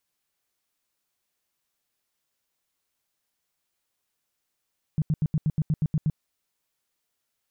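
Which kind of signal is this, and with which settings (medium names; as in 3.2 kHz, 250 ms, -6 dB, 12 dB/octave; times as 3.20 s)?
tone bursts 154 Hz, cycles 6, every 0.12 s, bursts 10, -19.5 dBFS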